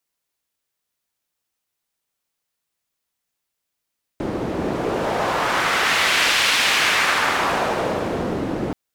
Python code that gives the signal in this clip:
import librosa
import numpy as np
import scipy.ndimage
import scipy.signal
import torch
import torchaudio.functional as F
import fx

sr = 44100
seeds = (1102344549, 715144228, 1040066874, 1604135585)

y = fx.wind(sr, seeds[0], length_s=4.53, low_hz=290.0, high_hz=2600.0, q=1.1, gusts=1, swing_db=7)